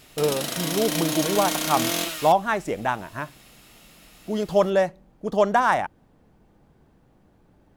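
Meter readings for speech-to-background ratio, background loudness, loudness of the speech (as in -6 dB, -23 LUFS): 2.0 dB, -26.0 LUFS, -24.0 LUFS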